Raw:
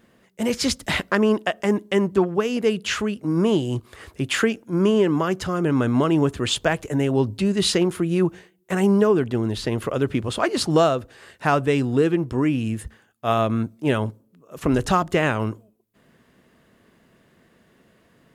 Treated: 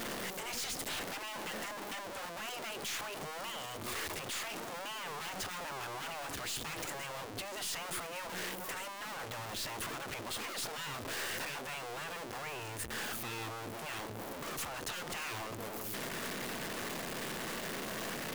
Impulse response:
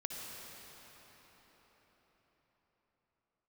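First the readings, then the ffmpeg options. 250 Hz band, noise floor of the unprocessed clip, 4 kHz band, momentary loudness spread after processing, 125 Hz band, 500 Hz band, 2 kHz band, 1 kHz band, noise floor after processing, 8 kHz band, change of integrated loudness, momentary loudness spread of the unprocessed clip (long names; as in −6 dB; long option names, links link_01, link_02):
−26.0 dB, −60 dBFS, −10.0 dB, 4 LU, −24.0 dB, −22.0 dB, −10.5 dB, −13.5 dB, −44 dBFS, −6.0 dB, −17.5 dB, 7 LU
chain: -af "aeval=exprs='val(0)+0.5*0.1*sgn(val(0))':channel_layout=same,highpass=frequency=320:poles=1,afftfilt=real='re*lt(hypot(re,im),0.224)':imag='im*lt(hypot(re,im),0.224)':win_size=1024:overlap=0.75,aeval=exprs='(tanh(25.1*val(0)+0.2)-tanh(0.2))/25.1':channel_layout=same,volume=-8dB"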